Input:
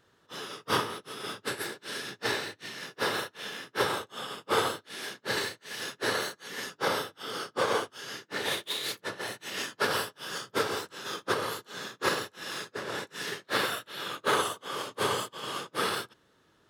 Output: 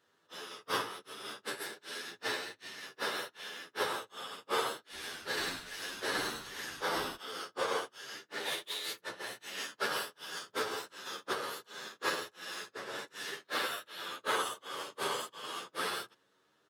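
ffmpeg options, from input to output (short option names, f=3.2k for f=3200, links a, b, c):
-filter_complex "[0:a]highpass=f=350:p=1,asplit=3[a][b][c];[a]afade=t=out:st=4.92:d=0.02[d];[b]asplit=5[e][f][g][h][i];[f]adelay=96,afreqshift=-130,volume=-3.5dB[j];[g]adelay=192,afreqshift=-260,volume=-13.7dB[k];[h]adelay=288,afreqshift=-390,volume=-23.8dB[l];[i]adelay=384,afreqshift=-520,volume=-34dB[m];[e][j][k][l][m]amix=inputs=5:normalize=0,afade=t=in:st=4.92:d=0.02,afade=t=out:st=7.15:d=0.02[n];[c]afade=t=in:st=7.15:d=0.02[o];[d][n][o]amix=inputs=3:normalize=0,asplit=2[p][q];[q]adelay=9.9,afreqshift=0.59[r];[p][r]amix=inputs=2:normalize=1,volume=-2dB"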